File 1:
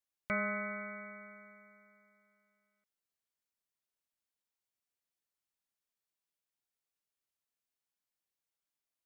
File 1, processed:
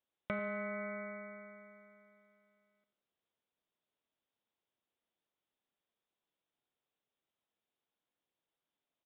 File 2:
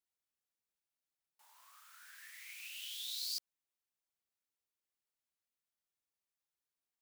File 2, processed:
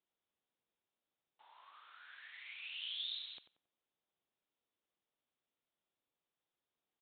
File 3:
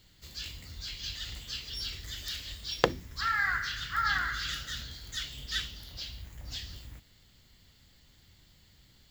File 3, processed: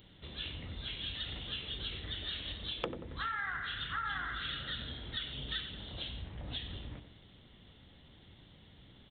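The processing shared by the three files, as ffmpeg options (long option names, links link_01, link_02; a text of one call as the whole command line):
ffmpeg -i in.wav -filter_complex "[0:a]equalizer=frequency=2200:width=0.44:gain=-14,aresample=8000,asoftclip=type=tanh:threshold=-27.5dB,aresample=44100,aemphasis=mode=production:type=bsi,asplit=2[link_01][link_02];[link_02]adelay=91,lowpass=frequency=1900:poles=1,volume=-10dB,asplit=2[link_03][link_04];[link_04]adelay=91,lowpass=frequency=1900:poles=1,volume=0.34,asplit=2[link_05][link_06];[link_06]adelay=91,lowpass=frequency=1900:poles=1,volume=0.34,asplit=2[link_07][link_08];[link_08]adelay=91,lowpass=frequency=1900:poles=1,volume=0.34[link_09];[link_01][link_03][link_05][link_07][link_09]amix=inputs=5:normalize=0,acompressor=threshold=-50dB:ratio=4,volume=13.5dB" out.wav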